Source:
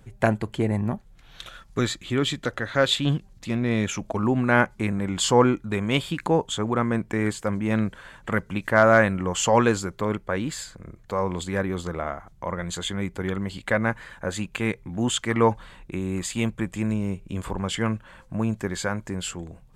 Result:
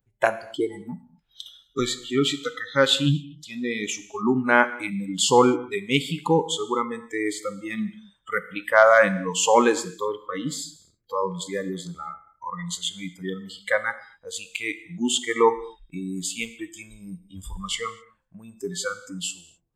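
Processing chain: spectral noise reduction 28 dB; gated-style reverb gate 280 ms falling, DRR 12 dB; trim +2.5 dB

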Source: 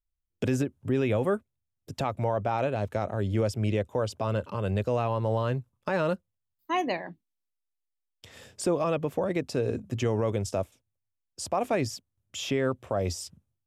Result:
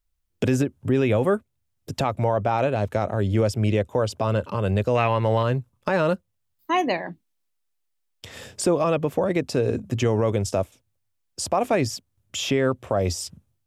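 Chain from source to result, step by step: 4.95–5.43 s: peaking EQ 2.1 kHz +14.5 dB 0.94 oct; in parallel at -3 dB: compression, threshold -40 dBFS, peak gain reduction 17.5 dB; on the sum: trim +4.5 dB

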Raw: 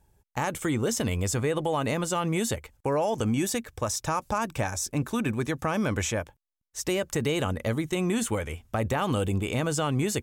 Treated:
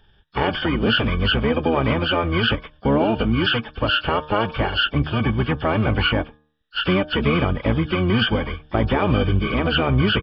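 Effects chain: knee-point frequency compression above 2.2 kHz 4:1; de-hum 151.9 Hz, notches 11; harmony voices -12 st -1 dB, +7 st -18 dB; trim +5 dB

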